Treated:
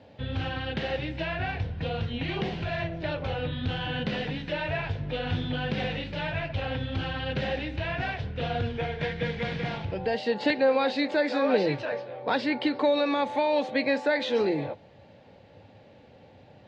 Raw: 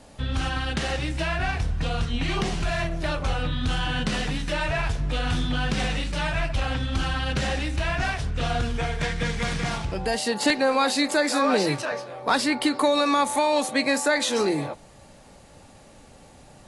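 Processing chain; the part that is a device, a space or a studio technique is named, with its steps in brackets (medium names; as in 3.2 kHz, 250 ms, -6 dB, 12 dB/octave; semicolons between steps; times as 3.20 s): guitar cabinet (cabinet simulation 100–3800 Hz, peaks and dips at 100 Hz +10 dB, 500 Hz +6 dB, 1.2 kHz -9 dB); trim -3.5 dB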